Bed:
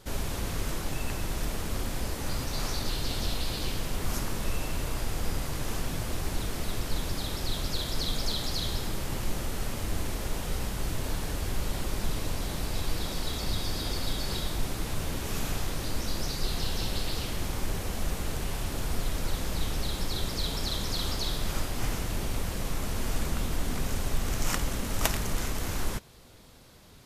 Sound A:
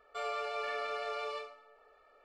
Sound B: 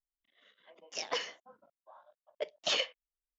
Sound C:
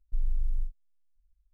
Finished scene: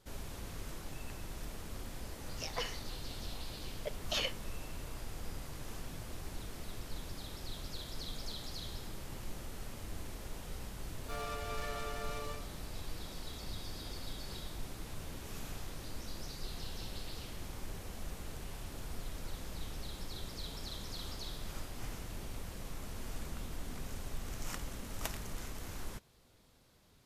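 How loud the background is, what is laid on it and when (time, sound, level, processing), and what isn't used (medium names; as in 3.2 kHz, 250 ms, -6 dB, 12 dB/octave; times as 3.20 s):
bed -12.5 dB
1.45 s: add B -4.5 dB
10.94 s: add A -5.5 dB + tracing distortion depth 0.16 ms
not used: C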